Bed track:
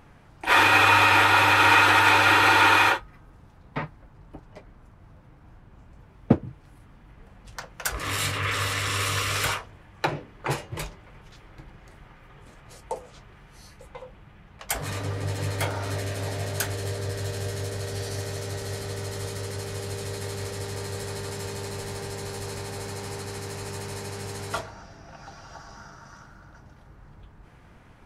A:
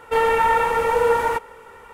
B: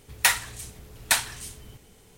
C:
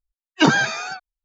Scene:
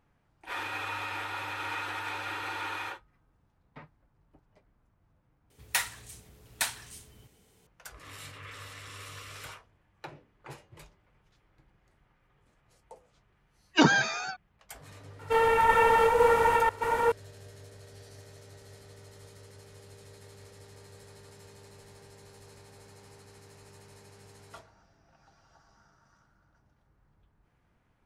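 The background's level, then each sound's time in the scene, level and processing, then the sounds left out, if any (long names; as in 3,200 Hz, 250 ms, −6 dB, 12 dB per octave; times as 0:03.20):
bed track −18.5 dB
0:05.50: overwrite with B −8.5 dB + high-pass filter 51 Hz
0:13.37: mix in C −5.5 dB
0:15.19: mix in A −5.5 dB + delay that plays each chunk backwards 501 ms, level −1 dB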